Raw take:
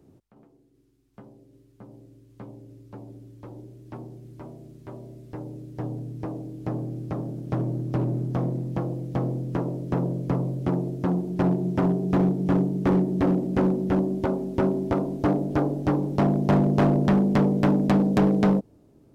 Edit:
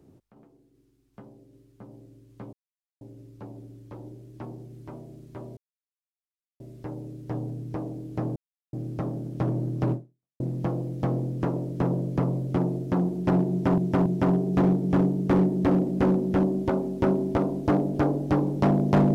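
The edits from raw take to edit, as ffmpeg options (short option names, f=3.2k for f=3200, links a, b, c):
-filter_complex "[0:a]asplit=7[a][b][c][d][e][f][g];[a]atrim=end=2.53,asetpts=PTS-STARTPTS,afade=t=out:st=2.526:d=0.004:c=hsin,apad=pad_dur=0.48[h];[b]atrim=start=2.53:end=5.09,asetpts=PTS-STARTPTS,afade=t=in:d=0.004:c=hsin,afade=t=out:st=2.556:d=0.004:c=hsin,apad=pad_dur=1.03[i];[c]atrim=start=5.09:end=6.85,asetpts=PTS-STARTPTS,afade=t=in:d=0.004:c=hsin,afade=t=out:st=1.756:d=0.004:c=hsin,apad=pad_dur=0.37[j];[d]atrim=start=6.85:end=8.52,asetpts=PTS-STARTPTS,afade=t=in:d=0.004:c=hsin,afade=t=out:st=1.2:d=0.47:c=exp[k];[e]atrim=start=8.52:end=11.902,asetpts=PTS-STARTPTS,afade=t=in:d=0.004:c=hsin[l];[f]atrim=start=11.618:end=11.902[m];[g]atrim=start=11.618[n];[h][i][j][k][l]concat=n=5:v=0:a=1[o];[o][m]acrossfade=d=0.004:c1=hsin:c2=hsin[p];[p][n]acrossfade=d=0.004:c1=hsin:c2=hsin"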